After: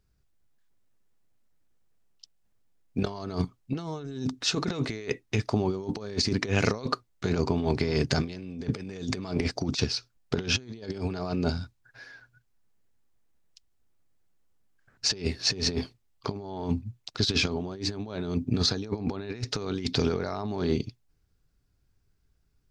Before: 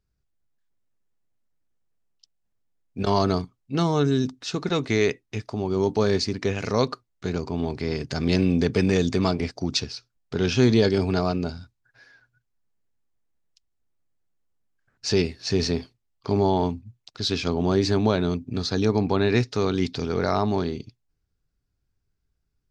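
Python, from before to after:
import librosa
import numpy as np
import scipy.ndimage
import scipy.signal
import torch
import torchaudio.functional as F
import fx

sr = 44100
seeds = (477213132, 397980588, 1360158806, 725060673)

y = fx.over_compress(x, sr, threshold_db=-28.0, ratio=-0.5)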